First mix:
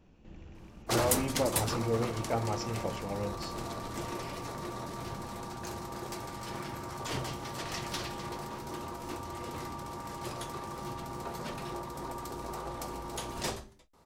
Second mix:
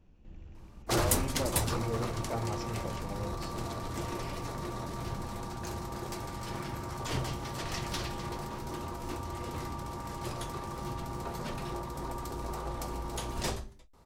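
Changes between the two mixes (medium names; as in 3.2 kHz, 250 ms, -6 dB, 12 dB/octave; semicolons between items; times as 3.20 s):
speech -6.0 dB; master: add bass shelf 91 Hz +11.5 dB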